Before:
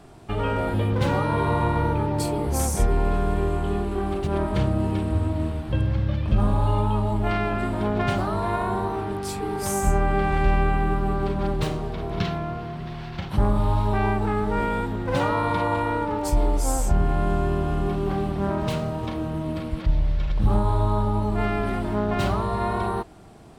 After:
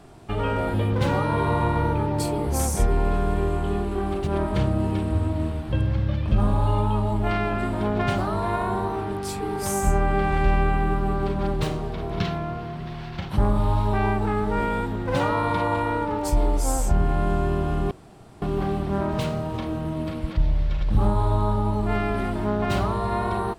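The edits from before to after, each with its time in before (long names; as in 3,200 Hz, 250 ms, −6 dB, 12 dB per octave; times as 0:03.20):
0:17.91: splice in room tone 0.51 s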